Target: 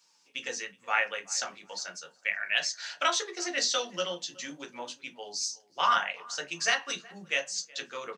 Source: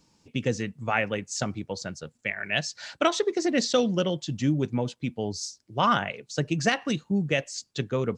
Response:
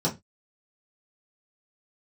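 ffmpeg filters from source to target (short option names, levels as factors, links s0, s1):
-filter_complex "[0:a]highpass=1300,asplit=2[s0][s1];[s1]adelay=370,lowpass=f=2000:p=1,volume=0.0794,asplit=2[s2][s3];[s3]adelay=370,lowpass=f=2000:p=1,volume=0.26[s4];[s0][s2][s4]amix=inputs=3:normalize=0,asplit=2[s5][s6];[1:a]atrim=start_sample=2205,asetrate=48510,aresample=44100,adelay=9[s7];[s6][s7]afir=irnorm=-1:irlink=0,volume=0.299[s8];[s5][s8]amix=inputs=2:normalize=0"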